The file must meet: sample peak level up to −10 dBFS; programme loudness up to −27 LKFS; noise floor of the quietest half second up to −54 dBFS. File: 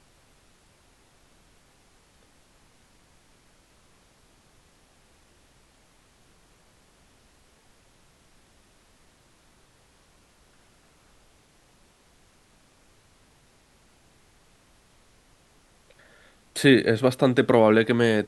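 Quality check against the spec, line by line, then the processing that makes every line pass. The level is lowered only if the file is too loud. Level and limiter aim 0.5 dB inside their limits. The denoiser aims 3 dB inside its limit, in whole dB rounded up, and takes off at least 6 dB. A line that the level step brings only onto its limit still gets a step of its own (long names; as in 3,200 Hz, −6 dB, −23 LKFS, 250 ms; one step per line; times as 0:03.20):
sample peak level −4.5 dBFS: out of spec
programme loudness −20.0 LKFS: out of spec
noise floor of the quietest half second −60 dBFS: in spec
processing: level −7.5 dB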